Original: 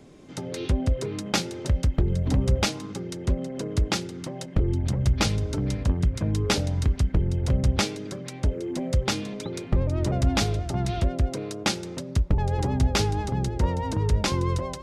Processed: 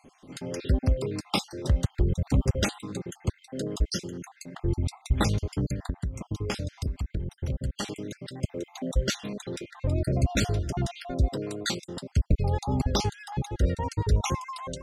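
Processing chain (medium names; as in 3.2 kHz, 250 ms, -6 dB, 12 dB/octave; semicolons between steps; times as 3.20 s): random holes in the spectrogram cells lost 47%; 5.72–7.88 s: compression, threshold -27 dBFS, peak gain reduction 10.5 dB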